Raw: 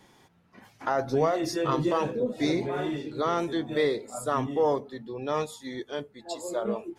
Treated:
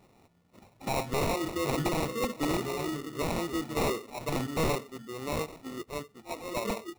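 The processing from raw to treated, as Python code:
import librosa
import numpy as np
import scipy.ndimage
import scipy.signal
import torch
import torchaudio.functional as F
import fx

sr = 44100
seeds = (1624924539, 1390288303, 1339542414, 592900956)

y = fx.sample_hold(x, sr, seeds[0], rate_hz=1600.0, jitter_pct=0)
y = (np.mod(10.0 ** (19.0 / 20.0) * y + 1.0, 2.0) - 1.0) / 10.0 ** (19.0 / 20.0)
y = F.gain(torch.from_numpy(y), -3.0).numpy()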